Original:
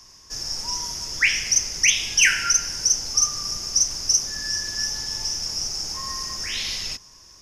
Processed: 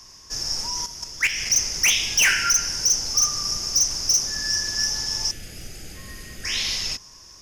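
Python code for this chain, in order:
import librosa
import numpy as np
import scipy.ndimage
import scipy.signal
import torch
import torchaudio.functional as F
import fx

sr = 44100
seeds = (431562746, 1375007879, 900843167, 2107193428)

y = np.clip(x, -10.0 ** (-16.5 / 20.0), 10.0 ** (-16.5 / 20.0))
y = fx.level_steps(y, sr, step_db=10, at=(0.67, 1.5))
y = fx.fixed_phaser(y, sr, hz=2400.0, stages=4, at=(5.31, 6.45))
y = y * librosa.db_to_amplitude(2.5)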